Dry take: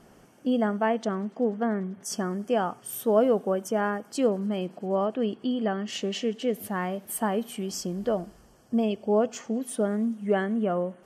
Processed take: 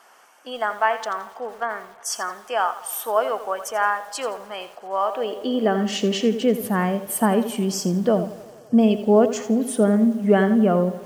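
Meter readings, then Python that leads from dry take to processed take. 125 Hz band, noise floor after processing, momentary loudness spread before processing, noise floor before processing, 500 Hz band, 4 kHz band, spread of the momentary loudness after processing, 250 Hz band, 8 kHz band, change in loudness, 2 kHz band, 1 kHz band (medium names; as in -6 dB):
+7.5 dB, -48 dBFS, 7 LU, -56 dBFS, +4.5 dB, +7.0 dB, 12 LU, +6.5 dB, +7.0 dB, +6.0 dB, +8.5 dB, +8.0 dB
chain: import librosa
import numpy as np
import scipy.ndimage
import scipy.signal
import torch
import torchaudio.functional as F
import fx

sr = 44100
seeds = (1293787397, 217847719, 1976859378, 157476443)

y = fx.echo_wet_bandpass(x, sr, ms=89, feedback_pct=78, hz=670.0, wet_db=-20.0)
y = fx.filter_sweep_highpass(y, sr, from_hz=1000.0, to_hz=140.0, start_s=5.02, end_s=6.03, q=1.5)
y = fx.echo_crushed(y, sr, ms=84, feedback_pct=35, bits=8, wet_db=-12.0)
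y = y * 10.0 ** (6.5 / 20.0)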